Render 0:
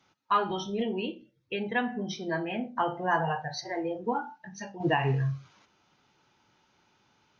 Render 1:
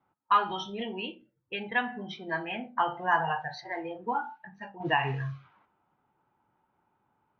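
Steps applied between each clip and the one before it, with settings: band shelf 1700 Hz +8.5 dB 2.6 oct; low-pass opened by the level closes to 740 Hz, open at -21.5 dBFS; gain -6 dB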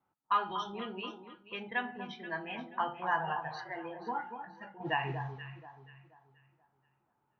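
echo with dull and thin repeats by turns 0.24 s, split 1300 Hz, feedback 55%, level -8 dB; gain -6 dB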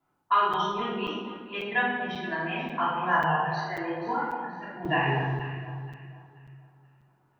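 shoebox room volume 760 m³, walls mixed, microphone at 3.1 m; crackling interface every 0.54 s, samples 256, zero, from 0.53; gain +1.5 dB

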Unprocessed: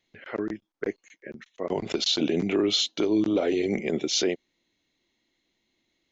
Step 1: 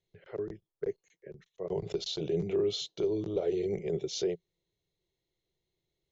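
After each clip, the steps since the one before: EQ curve 170 Hz 0 dB, 250 Hz -26 dB, 400 Hz -1 dB, 570 Hz -8 dB, 1500 Hz -17 dB, 2500 Hz -17 dB, 3700 Hz -12 dB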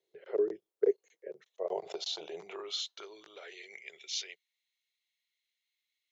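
high-pass sweep 420 Hz -> 2200 Hz, 0.94–3.93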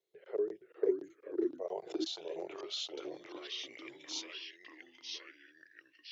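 echoes that change speed 0.45 s, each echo -2 st, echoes 2; gain -4.5 dB

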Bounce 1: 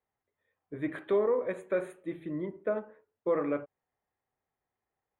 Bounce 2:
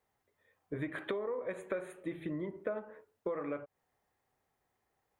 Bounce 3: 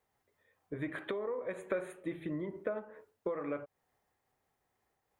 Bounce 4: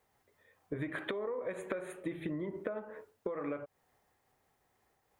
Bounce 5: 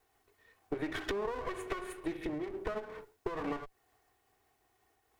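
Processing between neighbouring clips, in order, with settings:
compressor 16:1, threshold -38 dBFS, peak gain reduction 16 dB; dynamic EQ 280 Hz, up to -4 dB, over -54 dBFS, Q 0.75; gain +7 dB
noise-modulated level, depth 50%; gain +3 dB
compressor 12:1, threshold -39 dBFS, peak gain reduction 11 dB; gain +5.5 dB
minimum comb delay 2.7 ms; gain +3 dB

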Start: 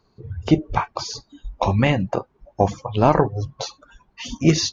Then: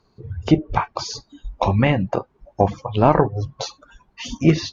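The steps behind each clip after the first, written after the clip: treble ducked by the level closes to 3000 Hz, closed at -15 dBFS; gain +1 dB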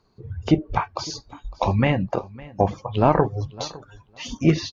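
feedback echo 0.557 s, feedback 15%, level -21 dB; gain -2.5 dB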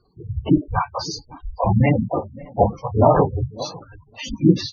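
phase scrambler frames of 50 ms; spectral gate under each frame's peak -15 dB strong; gain +3.5 dB

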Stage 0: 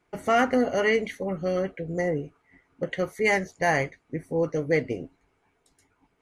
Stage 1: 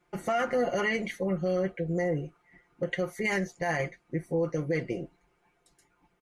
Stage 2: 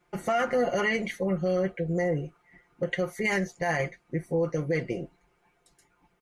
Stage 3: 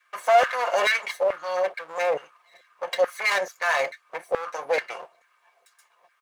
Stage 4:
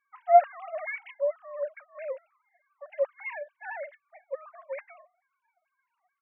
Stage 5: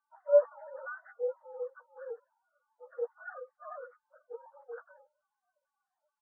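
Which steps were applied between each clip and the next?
comb 5.7 ms, depth 69%; limiter -18 dBFS, peak gain reduction 10.5 dB; gain -2 dB
bell 310 Hz -2.5 dB 0.33 oct; gain +2 dB
minimum comb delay 1.8 ms; LFO high-pass saw down 2.3 Hz 590–1600 Hz; gain +4.5 dB
sine-wave speech; gain -5 dB
inharmonic rescaling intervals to 82%; gain -5 dB

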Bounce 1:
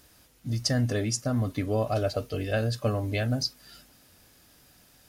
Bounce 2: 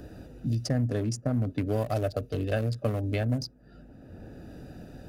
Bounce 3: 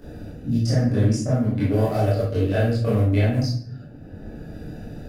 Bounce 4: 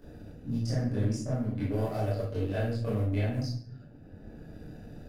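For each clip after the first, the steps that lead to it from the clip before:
Wiener smoothing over 41 samples; dynamic EQ 3700 Hz, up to -7 dB, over -46 dBFS, Q 0.72; three-band squash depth 70%
flange 1.4 Hz, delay 4.2 ms, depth 9.4 ms, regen -55%; reverb RT60 0.55 s, pre-delay 21 ms, DRR -10.5 dB
half-wave gain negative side -3 dB; gain -8.5 dB

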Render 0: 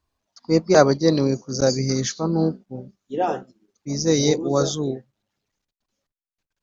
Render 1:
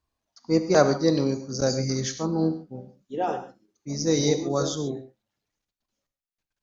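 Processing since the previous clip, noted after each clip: non-linear reverb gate 0.16 s flat, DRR 8.5 dB; gain -4.5 dB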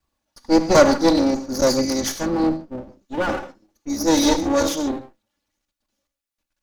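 minimum comb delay 3.5 ms; gain +7 dB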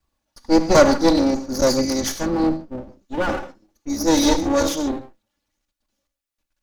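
low shelf 63 Hz +6 dB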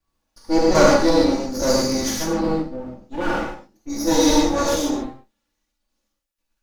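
non-linear reverb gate 0.17 s flat, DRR -5 dB; gain -5.5 dB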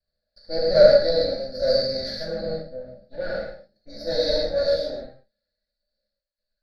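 EQ curve 200 Hz 0 dB, 310 Hz -15 dB, 600 Hz +13 dB, 1000 Hz -26 dB, 1600 Hz +5 dB, 3000 Hz -17 dB, 4400 Hz +14 dB, 6400 Hz -25 dB, 9500 Hz -17 dB, 15000 Hz -23 dB; gain -7.5 dB

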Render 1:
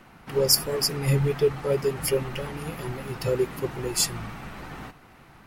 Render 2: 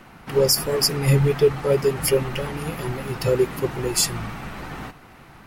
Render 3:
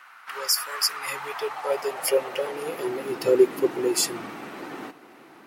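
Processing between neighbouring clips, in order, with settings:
maximiser +11 dB; gain -6 dB
high-pass sweep 1300 Hz -> 320 Hz, 0.81–3.15; gain -3.5 dB

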